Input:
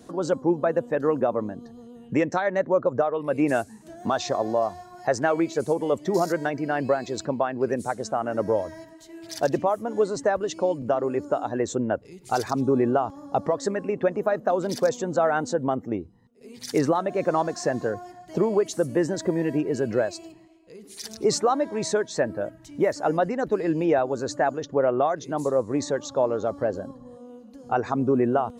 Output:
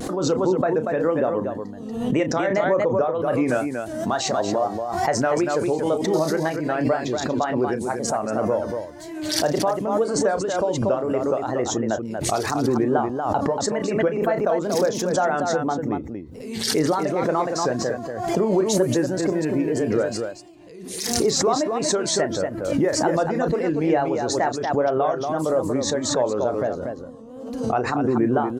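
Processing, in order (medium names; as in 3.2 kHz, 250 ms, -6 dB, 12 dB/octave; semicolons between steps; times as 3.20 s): wow and flutter 140 cents; loudspeakers at several distances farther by 11 m -10 dB, 81 m -6 dB; swell ahead of each attack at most 47 dB/s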